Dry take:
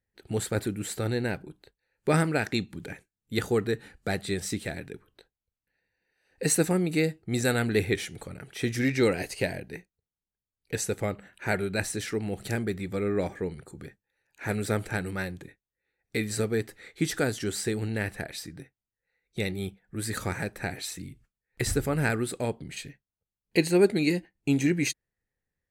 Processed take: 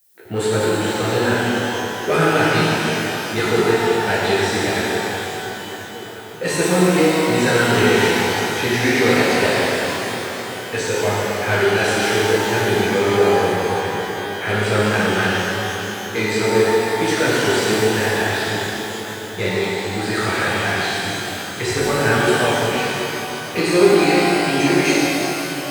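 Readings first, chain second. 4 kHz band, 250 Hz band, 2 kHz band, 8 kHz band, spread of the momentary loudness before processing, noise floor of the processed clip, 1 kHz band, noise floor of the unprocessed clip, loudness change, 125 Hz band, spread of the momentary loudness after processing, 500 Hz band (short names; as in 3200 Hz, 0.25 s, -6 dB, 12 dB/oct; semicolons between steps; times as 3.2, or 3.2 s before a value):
+16.0 dB, +9.5 dB, +15.0 dB, +8.5 dB, 16 LU, -30 dBFS, +18.5 dB, under -85 dBFS, +11.0 dB, +7.5 dB, 9 LU, +13.0 dB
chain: overdrive pedal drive 23 dB, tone 2600 Hz, clips at -9 dBFS; HPF 54 Hz; on a send: swung echo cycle 1.385 s, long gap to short 3:1, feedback 53%, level -17.5 dB; on the sum: low-pass opened by the level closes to 1500 Hz, open at -17.5 dBFS; flange 0.69 Hz, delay 7.6 ms, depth 4.7 ms, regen -48%; added noise violet -61 dBFS; shimmer reverb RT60 3.3 s, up +12 st, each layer -8 dB, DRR -7.5 dB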